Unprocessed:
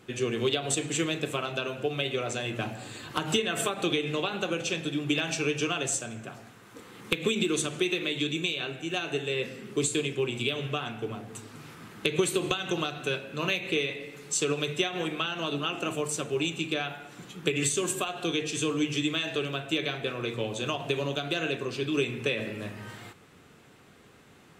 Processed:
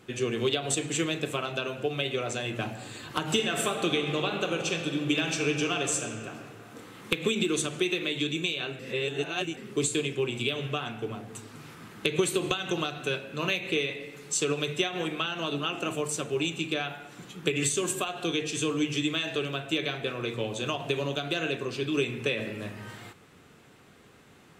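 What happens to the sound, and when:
3.27–7.11 s: reverb throw, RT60 2.4 s, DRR 5.5 dB
8.79–9.57 s: reverse

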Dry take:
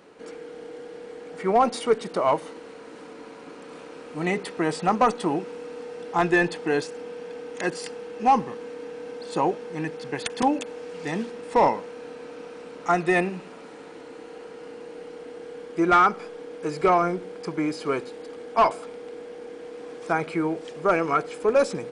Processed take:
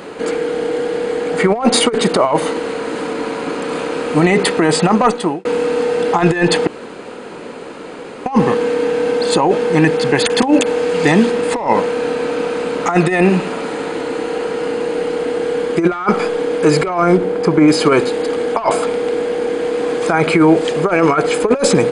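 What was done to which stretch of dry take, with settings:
4.24–5.45 s: fade out equal-power
6.67–8.26 s: room tone
17.17–17.68 s: treble shelf 2.1 kHz -9.5 dB
whole clip: band-stop 5.6 kHz, Q 7; compressor with a negative ratio -25 dBFS, ratio -0.5; loudness maximiser +18 dB; trim -1 dB

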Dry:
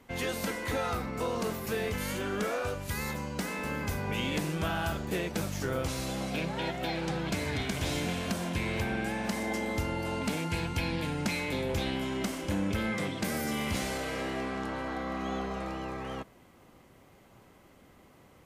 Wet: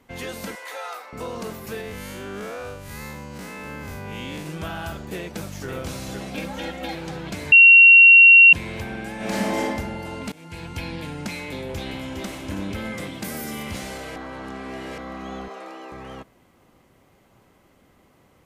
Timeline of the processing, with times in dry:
0.55–1.13 s: high-pass 560 Hz 24 dB/octave
1.81–4.46 s: spectral blur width 104 ms
5.17–5.68 s: echo throw 510 ms, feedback 60%, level -4.5 dB
6.35–6.95 s: comb 3.7 ms, depth 79%
7.52–8.53 s: bleep 2.74 kHz -6 dBFS
9.16–9.62 s: reverb throw, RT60 1.4 s, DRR -8.5 dB
10.32–10.77 s: fade in, from -20 dB
11.48–12.22 s: echo throw 410 ms, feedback 65%, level -5 dB
12.85–13.63 s: treble shelf 11 kHz +10 dB
14.16–14.98 s: reverse
15.48–15.92 s: high-pass 300 Hz 24 dB/octave

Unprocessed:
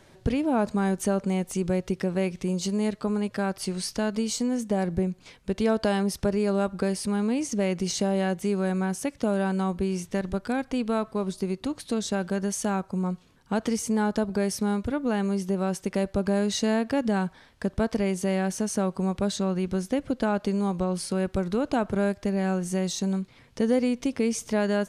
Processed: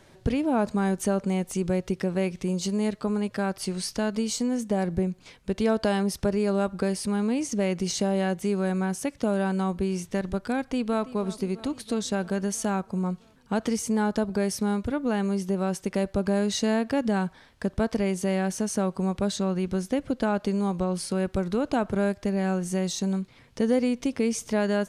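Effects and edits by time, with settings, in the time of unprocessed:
10.59–11.15 s: echo throw 330 ms, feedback 70%, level -16.5 dB

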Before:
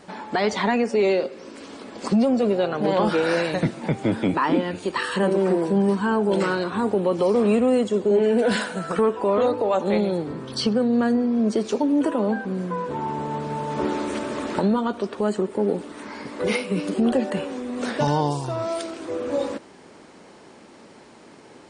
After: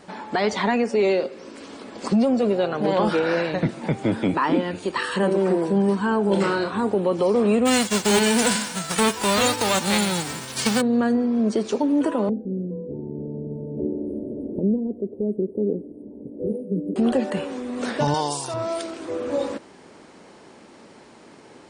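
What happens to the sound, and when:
3.19–3.69 s: distance through air 110 m
6.21–6.72 s: flutter echo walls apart 5.2 m, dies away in 0.27 s
7.65–10.80 s: formants flattened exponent 0.3
12.29–16.96 s: inverse Chebyshev band-stop 1.1–7.7 kHz, stop band 50 dB
18.14–18.54 s: RIAA curve recording

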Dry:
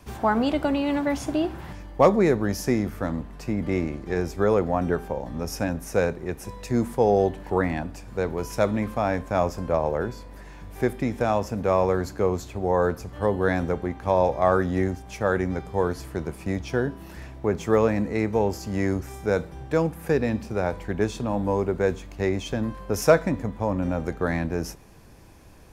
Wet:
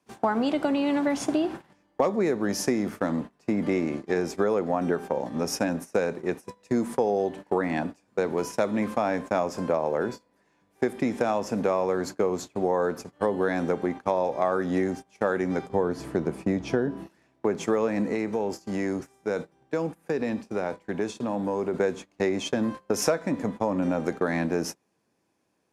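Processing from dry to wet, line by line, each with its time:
15.69–17.08 s: tilt EQ -2 dB/octave
18.14–21.74 s: compression 3:1, threshold -28 dBFS
whole clip: gate -33 dBFS, range -24 dB; Chebyshev band-pass 230–9700 Hz, order 2; compression, threshold -26 dBFS; trim +5 dB

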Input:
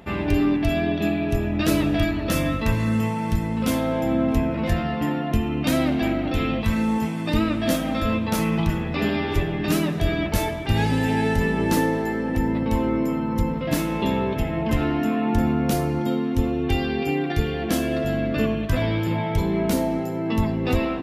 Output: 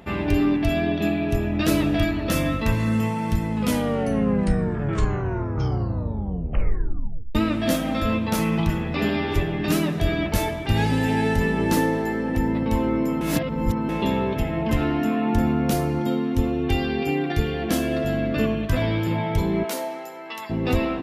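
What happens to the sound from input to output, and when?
3.49 s: tape stop 3.86 s
13.21–13.89 s: reverse
19.63–20.49 s: high-pass 520 Hz -> 1.1 kHz

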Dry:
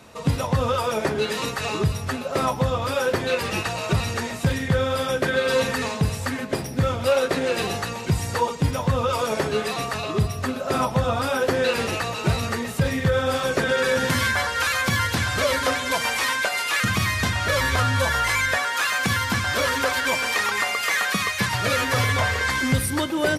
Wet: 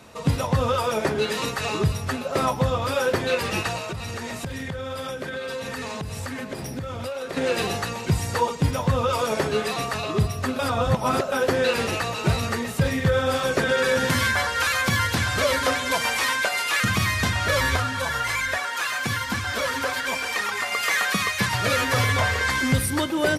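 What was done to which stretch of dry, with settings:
3.77–7.37 s: compression 16:1, threshold -27 dBFS
10.59–11.32 s: reverse
17.77–20.72 s: flange 1.2 Hz, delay 2.1 ms, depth 6.9 ms, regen -29%

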